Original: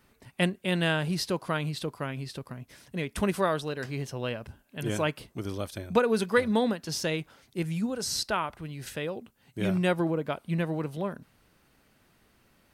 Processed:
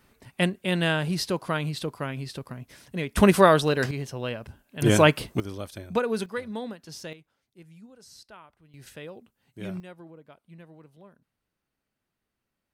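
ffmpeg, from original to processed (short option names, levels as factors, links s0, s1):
-af "asetnsamples=n=441:p=0,asendcmd='3.17 volume volume 10dB;3.91 volume volume 1dB;4.82 volume volume 11dB;5.4 volume volume -2dB;6.26 volume volume -9dB;7.13 volume volume -19.5dB;8.74 volume volume -7.5dB;9.8 volume volume -19.5dB',volume=1.26"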